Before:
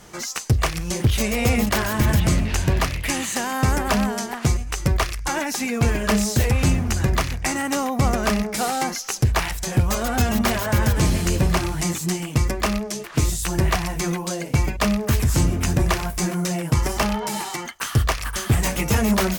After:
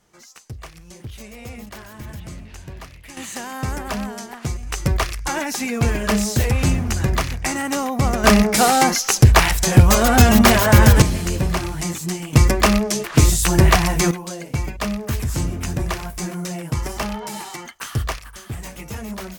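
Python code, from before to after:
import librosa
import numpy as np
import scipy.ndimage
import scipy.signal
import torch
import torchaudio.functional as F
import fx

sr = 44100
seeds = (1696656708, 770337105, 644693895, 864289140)

y = fx.gain(x, sr, db=fx.steps((0.0, -16.5), (3.17, -6.0), (4.63, 0.5), (8.24, 8.5), (11.02, -1.5), (12.33, 7.0), (14.11, -4.0), (18.19, -12.0)))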